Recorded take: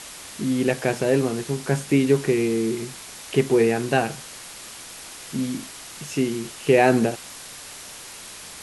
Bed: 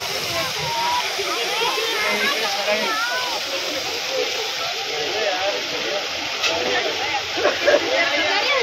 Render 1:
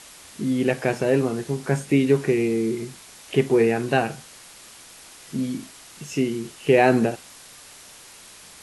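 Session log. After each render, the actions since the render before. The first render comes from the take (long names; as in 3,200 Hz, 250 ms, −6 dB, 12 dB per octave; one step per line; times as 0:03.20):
noise reduction from a noise print 6 dB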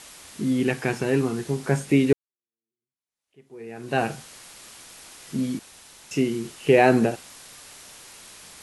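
0:00.60–0:01.45: parametric band 580 Hz −12 dB 0.43 octaves
0:02.13–0:04.03: fade in exponential
0:05.59–0:06.11: fill with room tone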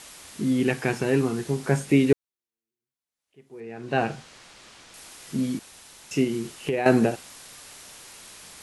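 0:03.60–0:04.94: high-frequency loss of the air 81 metres
0:06.24–0:06.86: downward compressor, threshold −22 dBFS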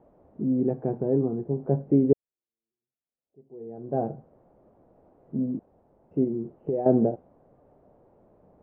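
Chebyshev low-pass filter 640 Hz, order 3
low-shelf EQ 87 Hz −5.5 dB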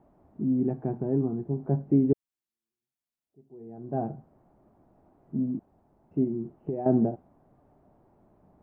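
parametric band 500 Hz −11.5 dB 0.5 octaves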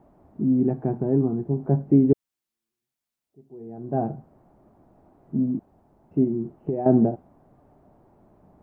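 level +5 dB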